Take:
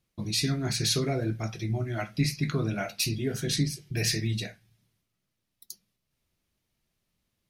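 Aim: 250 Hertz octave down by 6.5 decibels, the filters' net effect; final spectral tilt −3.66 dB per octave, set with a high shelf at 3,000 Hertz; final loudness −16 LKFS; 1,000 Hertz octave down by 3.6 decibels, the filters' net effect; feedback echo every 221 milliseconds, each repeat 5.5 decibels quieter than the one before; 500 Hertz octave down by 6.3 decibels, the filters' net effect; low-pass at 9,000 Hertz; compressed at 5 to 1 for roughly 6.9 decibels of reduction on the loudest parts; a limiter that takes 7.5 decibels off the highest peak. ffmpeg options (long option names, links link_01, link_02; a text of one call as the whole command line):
ffmpeg -i in.wav -af "lowpass=9000,equalizer=frequency=250:width_type=o:gain=-8.5,equalizer=frequency=500:width_type=o:gain=-4.5,equalizer=frequency=1000:width_type=o:gain=-4,highshelf=frequency=3000:gain=6.5,acompressor=threshold=-27dB:ratio=5,alimiter=limit=-23dB:level=0:latency=1,aecho=1:1:221|442|663|884|1105|1326|1547:0.531|0.281|0.149|0.079|0.0419|0.0222|0.0118,volume=16.5dB" out.wav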